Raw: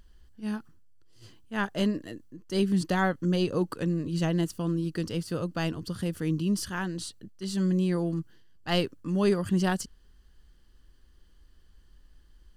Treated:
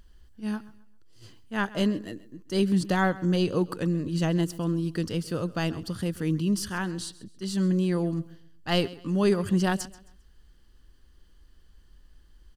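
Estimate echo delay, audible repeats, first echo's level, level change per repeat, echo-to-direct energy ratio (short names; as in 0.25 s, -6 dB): 0.133 s, 2, -19.0 dB, -10.0 dB, -18.5 dB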